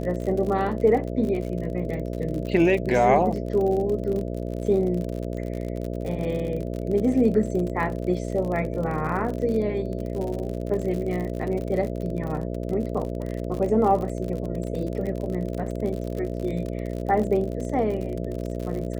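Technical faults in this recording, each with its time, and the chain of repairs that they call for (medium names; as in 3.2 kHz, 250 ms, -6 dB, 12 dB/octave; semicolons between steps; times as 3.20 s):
buzz 60 Hz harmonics 11 -30 dBFS
crackle 53 per s -30 dBFS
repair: de-click; de-hum 60 Hz, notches 11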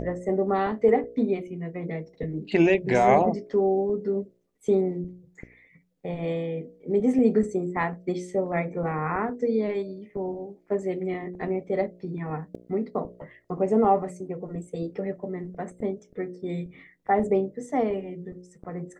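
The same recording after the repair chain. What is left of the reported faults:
nothing left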